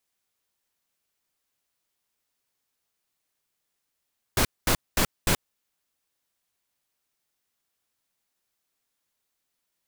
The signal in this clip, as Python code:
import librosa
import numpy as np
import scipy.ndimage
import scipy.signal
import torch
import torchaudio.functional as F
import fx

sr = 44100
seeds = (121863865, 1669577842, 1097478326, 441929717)

y = fx.noise_burst(sr, seeds[0], colour='pink', on_s=0.08, off_s=0.22, bursts=4, level_db=-21.5)